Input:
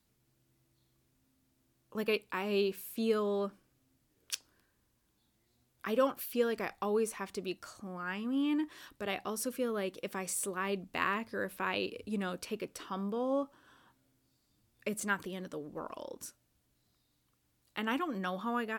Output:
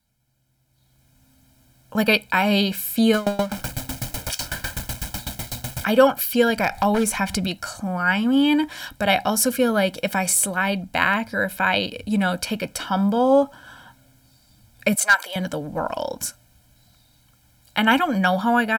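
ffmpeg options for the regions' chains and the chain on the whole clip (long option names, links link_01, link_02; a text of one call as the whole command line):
ffmpeg -i in.wav -filter_complex "[0:a]asettb=1/sr,asplit=3[link_01][link_02][link_03];[link_01]atrim=end=3.144[link_04];[link_02]atrim=start=3.14:end=5.85,asetpts=PTS-STARTPTS,afade=type=in:duration=0.004:curve=qsin,afade=type=out:start_time=2.706:duration=0.004:curve=qsin,aeval=exprs='val(0)+0.5*0.0178*sgn(val(0))':channel_layout=same,aeval=exprs='val(0)*pow(10,-23*if(lt(mod(8*n/s,1),2*abs(8)/1000),1-mod(8*n/s,1)/(2*abs(8)/1000),(mod(8*n/s,1)-2*abs(8)/1000)/(1-2*abs(8)/1000))/20)':channel_layout=same[link_05];[link_03]atrim=start=5.846[link_06];[link_04][link_05]acrossfade=duration=0.004:curve1=hsin:curve2=qsin[link_07];[link_07][link_06]acrossfade=duration=0.004:curve1=qsin:curve2=hsin,asettb=1/sr,asplit=3[link_08][link_09][link_10];[link_08]atrim=end=6.504[link_11];[link_09]atrim=start=6.5:end=7.47,asetpts=PTS-STARTPTS,afade=type=in:duration=0.004:curve=qsin,afade=type=out:start_time=0.966:duration=0.004:curve=qsin,asubboost=boost=5.5:cutoff=230,acompressor=mode=upward:threshold=-35dB:ratio=2.5:attack=3.2:release=140:knee=2.83:detection=peak,aeval=exprs='0.0531*(abs(mod(val(0)/0.0531+3,4)-2)-1)':channel_layout=same[link_12];[link_10]atrim=start=7.466[link_13];[link_11][link_12]acrossfade=duration=0.004:curve1=hsin:curve2=qsin[link_14];[link_14][link_13]acrossfade=duration=0.004:curve1=qsin:curve2=hsin,asettb=1/sr,asplit=3[link_15][link_16][link_17];[link_15]atrim=end=14.954[link_18];[link_16]atrim=start=14.95:end=15.36,asetpts=PTS-STARTPTS,afade=type=in:duration=0.004:curve=qsin,afade=type=out:start_time=0.406:duration=0.004:curve=qsin,highpass=frequency=560:width=0.5412,highpass=frequency=560:width=1.3066,asoftclip=type=hard:threshold=-27.5dB[link_19];[link_17]atrim=start=15.356[link_20];[link_18][link_19]acrossfade=duration=0.004:curve1=hsin:curve2=qsin[link_21];[link_21][link_20]acrossfade=duration=0.004:curve1=qsin:curve2=hsin,aecho=1:1:1.3:0.83,dynaudnorm=framelen=670:gausssize=3:maxgain=16dB" out.wav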